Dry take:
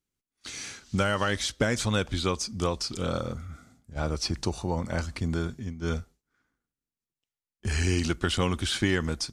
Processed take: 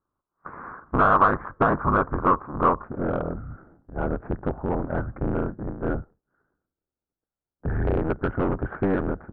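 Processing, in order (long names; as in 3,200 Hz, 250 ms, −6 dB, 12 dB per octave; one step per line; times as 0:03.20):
sub-harmonics by changed cycles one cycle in 3, inverted
Butterworth low-pass 1,500 Hz 48 dB per octave
low-shelf EQ 150 Hz −4.5 dB
soft clipping −20 dBFS, distortion −17 dB
parametric band 1,100 Hz +12 dB 0.57 octaves, from 0:02.84 −5.5 dB
level +6.5 dB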